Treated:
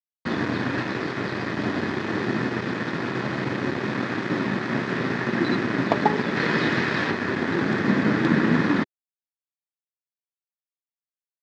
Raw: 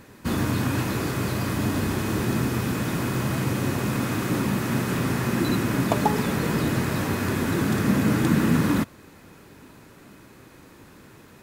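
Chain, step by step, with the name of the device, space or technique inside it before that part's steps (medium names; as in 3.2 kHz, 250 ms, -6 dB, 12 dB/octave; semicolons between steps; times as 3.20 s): 6.36–7.11 s: peaking EQ 3.3 kHz +6.5 dB 2.8 oct; blown loudspeaker (crossover distortion -32 dBFS; cabinet simulation 170–4600 Hz, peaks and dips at 370 Hz +3 dB, 1.8 kHz +7 dB, 2.8 kHz -4 dB); trim +3 dB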